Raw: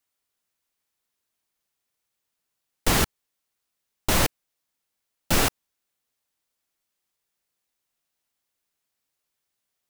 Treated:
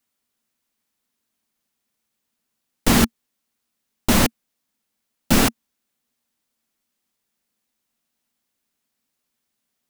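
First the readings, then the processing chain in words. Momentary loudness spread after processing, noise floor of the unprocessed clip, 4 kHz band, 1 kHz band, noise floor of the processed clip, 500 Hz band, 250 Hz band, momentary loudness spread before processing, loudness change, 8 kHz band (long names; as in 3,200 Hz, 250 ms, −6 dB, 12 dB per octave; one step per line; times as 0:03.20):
7 LU, −82 dBFS, +3.0 dB, +3.0 dB, −78 dBFS, +4.0 dB, +11.0 dB, 7 LU, +4.5 dB, +3.0 dB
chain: parametric band 230 Hz +13 dB 0.51 octaves
level +3 dB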